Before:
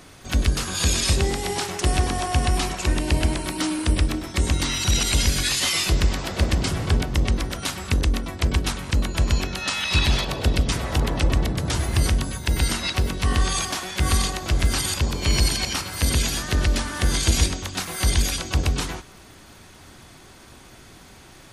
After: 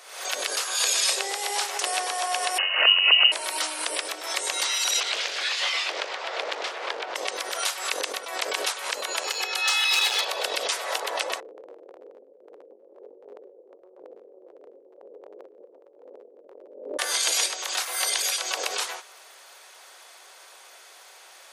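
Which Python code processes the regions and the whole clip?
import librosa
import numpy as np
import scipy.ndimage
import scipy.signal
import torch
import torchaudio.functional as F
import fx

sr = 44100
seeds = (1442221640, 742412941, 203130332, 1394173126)

y = fx.chain(x, sr, fx.peak_eq(hz=560.0, db=-6.0, octaves=0.78),
    fx.freq_invert(carrier_hz=2900), at=(2.58, 3.32))
y = fx.chain(y, sr, fx.lowpass(hz=3500.0, slope=12),
    fx.doppler_dist(depth_ms=0.72), at=(5.0, 7.16))
y = fx.chain(y, sr, fx.low_shelf(hz=340.0, db=-5.5),
    fx.comb(ms=2.4, depth=0.84),
    fx.clip_hard(threshold_db=-17.0), at=(9.23, 10.21))
y = fx.chain(y, sr, fx.steep_lowpass(hz=530.0, slope=72),
    fx.transient(attack_db=-12, sustain_db=-5), at=(11.4, 16.99))
y = scipy.signal.sosfilt(scipy.signal.butter(6, 480.0, 'highpass', fs=sr, output='sos'), y)
y = fx.peak_eq(y, sr, hz=12000.0, db=2.5, octaves=3.0)
y = fx.pre_swell(y, sr, db_per_s=75.0)
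y = y * 10.0 ** (-1.0 / 20.0)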